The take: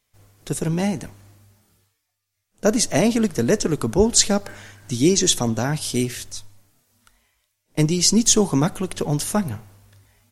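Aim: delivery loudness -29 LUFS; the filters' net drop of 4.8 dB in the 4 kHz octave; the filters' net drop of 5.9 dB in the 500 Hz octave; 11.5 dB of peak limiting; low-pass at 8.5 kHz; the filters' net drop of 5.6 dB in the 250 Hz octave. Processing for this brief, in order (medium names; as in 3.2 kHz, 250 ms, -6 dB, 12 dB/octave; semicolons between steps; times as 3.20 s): low-pass 8.5 kHz; peaking EQ 250 Hz -6 dB; peaking EQ 500 Hz -5.5 dB; peaking EQ 4 kHz -6 dB; trim -1 dB; peak limiter -17 dBFS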